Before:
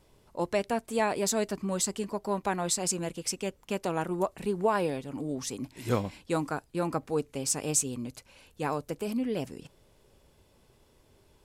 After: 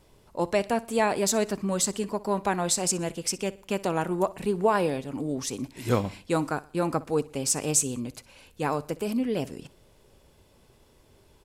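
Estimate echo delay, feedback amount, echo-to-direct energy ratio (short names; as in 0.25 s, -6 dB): 61 ms, 44%, -19.0 dB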